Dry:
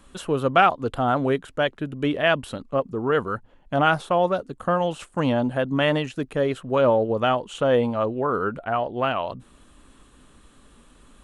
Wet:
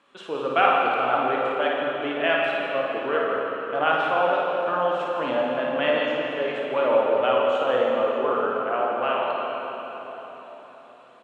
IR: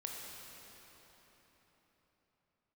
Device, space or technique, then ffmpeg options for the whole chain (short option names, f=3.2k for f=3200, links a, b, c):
station announcement: -filter_complex "[0:a]highpass=400,lowpass=3.7k,equalizer=f=2.5k:t=o:w=0.35:g=4,aecho=1:1:55.39|169.1:0.562|0.282[a];[1:a]atrim=start_sample=2205[b];[a][b]afir=irnorm=-1:irlink=0"